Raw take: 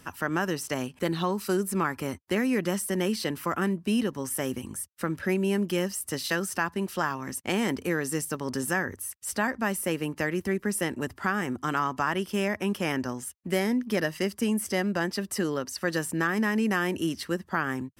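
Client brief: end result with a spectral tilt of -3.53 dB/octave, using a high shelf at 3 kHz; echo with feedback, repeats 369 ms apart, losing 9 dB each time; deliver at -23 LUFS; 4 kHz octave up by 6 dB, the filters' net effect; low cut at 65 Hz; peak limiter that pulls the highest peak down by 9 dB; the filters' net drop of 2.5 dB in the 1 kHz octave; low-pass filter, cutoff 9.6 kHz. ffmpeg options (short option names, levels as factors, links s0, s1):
-af "highpass=65,lowpass=9600,equalizer=f=1000:t=o:g=-4.5,highshelf=f=3000:g=6.5,equalizer=f=4000:t=o:g=3.5,alimiter=limit=0.126:level=0:latency=1,aecho=1:1:369|738|1107|1476:0.355|0.124|0.0435|0.0152,volume=2"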